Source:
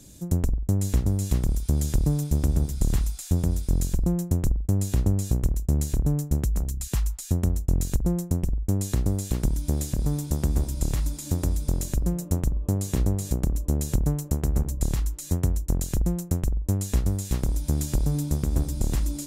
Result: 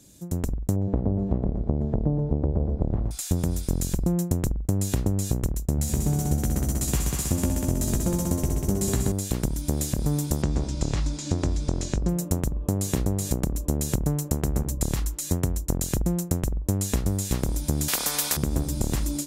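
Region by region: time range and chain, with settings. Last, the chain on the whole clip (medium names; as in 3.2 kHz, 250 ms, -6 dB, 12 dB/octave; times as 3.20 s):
0.76–3.11 s: resonant low-pass 660 Hz, resonance Q 1.7 + feedback delay 118 ms, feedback 55%, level -8.5 dB
5.76–9.12 s: doubling 15 ms -5 dB + multi-head delay 64 ms, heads all three, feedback 68%, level -9 dB
10.42–12.09 s: low-pass 6.5 kHz 24 dB/octave + doubling 20 ms -12.5 dB
17.88–18.37 s: comb 4.1 ms, depth 47% + spectrum-flattening compressor 10:1
whole clip: level rider gain up to 10.5 dB; bass shelf 72 Hz -10.5 dB; compression, threshold -16 dBFS; trim -3.5 dB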